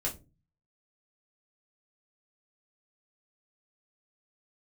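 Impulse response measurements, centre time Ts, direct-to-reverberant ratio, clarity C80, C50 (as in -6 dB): 16 ms, -3.5 dB, 21.0 dB, 14.0 dB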